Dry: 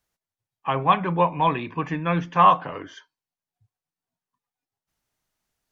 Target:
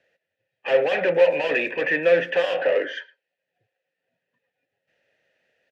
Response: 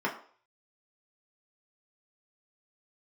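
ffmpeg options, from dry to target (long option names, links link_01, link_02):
-filter_complex "[0:a]acrossover=split=160|520|1900[link_01][link_02][link_03][link_04];[link_01]acompressor=mode=upward:threshold=-55dB:ratio=2.5[link_05];[link_05][link_02][link_03][link_04]amix=inputs=4:normalize=0,asplit=2[link_06][link_07];[link_07]highpass=frequency=720:poles=1,volume=33dB,asoftclip=type=tanh:threshold=-3dB[link_08];[link_06][link_08]amix=inputs=2:normalize=0,lowpass=frequency=2500:poles=1,volume=-6dB,asplit=3[link_09][link_10][link_11];[link_09]bandpass=frequency=530:width_type=q:width=8,volume=0dB[link_12];[link_10]bandpass=frequency=1840:width_type=q:width=8,volume=-6dB[link_13];[link_11]bandpass=frequency=2480:width_type=q:width=8,volume=-9dB[link_14];[link_12][link_13][link_14]amix=inputs=3:normalize=0,asplit=2[link_15][link_16];[link_16]adelay=110,highpass=300,lowpass=3400,asoftclip=type=hard:threshold=-19dB,volume=-21dB[link_17];[link_15][link_17]amix=inputs=2:normalize=0,volume=3dB"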